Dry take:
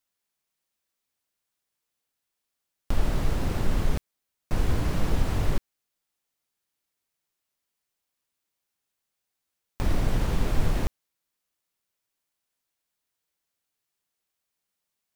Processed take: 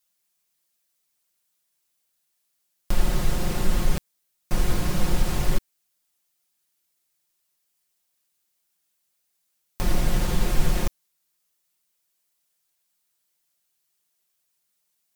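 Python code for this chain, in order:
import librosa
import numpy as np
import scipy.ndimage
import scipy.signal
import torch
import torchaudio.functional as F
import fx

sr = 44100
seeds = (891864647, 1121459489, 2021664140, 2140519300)

y = fx.high_shelf(x, sr, hz=4100.0, db=9.0)
y = y + 0.65 * np.pad(y, (int(5.6 * sr / 1000.0), 0))[:len(y)]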